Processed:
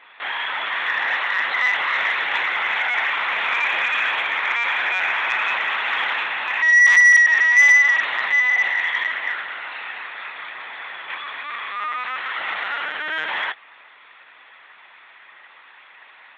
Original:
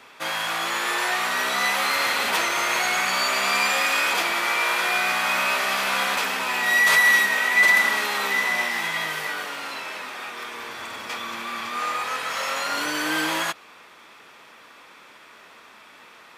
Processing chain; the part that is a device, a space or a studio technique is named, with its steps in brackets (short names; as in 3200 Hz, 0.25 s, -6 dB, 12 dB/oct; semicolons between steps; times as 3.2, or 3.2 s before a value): talking toy (LPC vocoder at 8 kHz pitch kept; HPF 600 Hz 12 dB/oct; bell 1900 Hz +8.5 dB 0.3 oct; soft clip -7 dBFS, distortion -17 dB)